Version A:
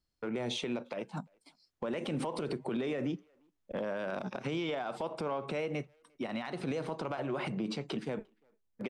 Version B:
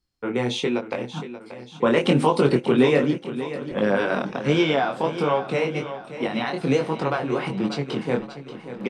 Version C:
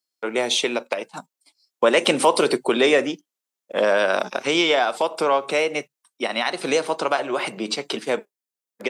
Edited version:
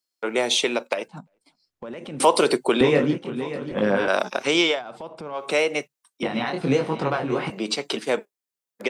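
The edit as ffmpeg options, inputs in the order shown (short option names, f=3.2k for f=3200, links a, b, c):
-filter_complex "[0:a]asplit=2[a][b];[1:a]asplit=2[c][d];[2:a]asplit=5[e][f][g][h][i];[e]atrim=end=1.082[j];[a]atrim=start=1.078:end=2.202[k];[f]atrim=start=2.198:end=2.812[l];[c]atrim=start=2.808:end=4.082[m];[g]atrim=start=4.078:end=4.82[n];[b]atrim=start=4.66:end=5.48[o];[h]atrim=start=5.32:end=6.232[p];[d]atrim=start=6.228:end=7.502[q];[i]atrim=start=7.498[r];[j][k]acrossfade=d=0.004:c1=hsin:c2=hsin[s];[s][l]acrossfade=d=0.004:c1=hsin:c2=hsin[t];[t][m]acrossfade=d=0.004:c1=hsin:c2=hsin[u];[u][n]acrossfade=d=0.004:c1=hsin:c2=hsin[v];[v][o]acrossfade=d=0.16:c1=tri:c2=tri[w];[w][p]acrossfade=d=0.16:c1=tri:c2=tri[x];[x][q]acrossfade=d=0.004:c1=hsin:c2=hsin[y];[y][r]acrossfade=d=0.004:c1=hsin:c2=hsin"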